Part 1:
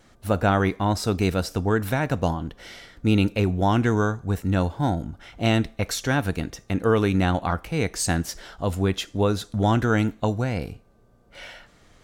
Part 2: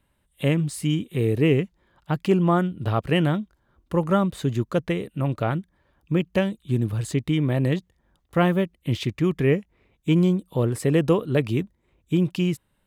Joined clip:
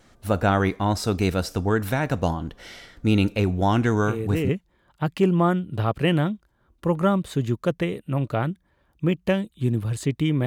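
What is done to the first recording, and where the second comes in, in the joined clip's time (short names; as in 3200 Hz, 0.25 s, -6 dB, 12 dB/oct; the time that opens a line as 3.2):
part 1
4.03 add part 2 from 1.11 s 0.46 s -6.5 dB
4.49 switch to part 2 from 1.57 s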